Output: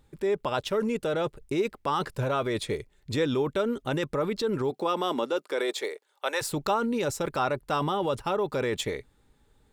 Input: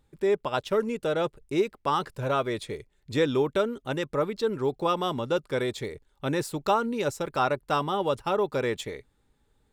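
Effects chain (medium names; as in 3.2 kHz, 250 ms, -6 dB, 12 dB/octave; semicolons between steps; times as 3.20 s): 4.70–6.41 s: high-pass 180 Hz -> 590 Hz 24 dB/octave; in parallel at -2 dB: compressor with a negative ratio -31 dBFS, ratio -0.5; on the sum: trim -3 dB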